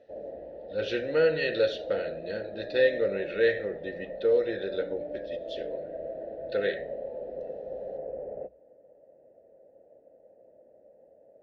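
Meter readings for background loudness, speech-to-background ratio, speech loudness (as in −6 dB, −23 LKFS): −39.0 LKFS, 10.0 dB, −29.0 LKFS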